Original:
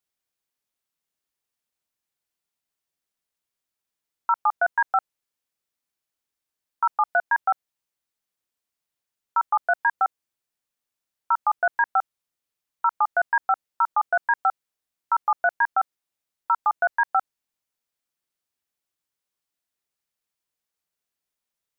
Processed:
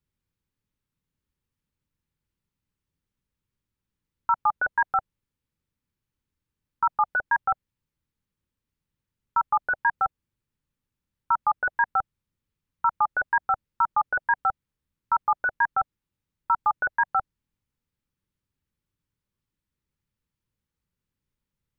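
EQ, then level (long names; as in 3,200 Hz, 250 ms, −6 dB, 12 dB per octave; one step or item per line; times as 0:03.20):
Butterworth band-reject 690 Hz, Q 4
bass and treble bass +13 dB, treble −7 dB
low-shelf EQ 330 Hz +9.5 dB
−1.5 dB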